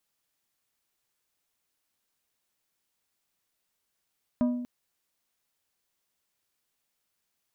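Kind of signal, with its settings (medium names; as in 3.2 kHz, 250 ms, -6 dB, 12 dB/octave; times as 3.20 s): glass hit plate, length 0.24 s, lowest mode 245 Hz, decay 0.97 s, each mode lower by 9 dB, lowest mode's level -20 dB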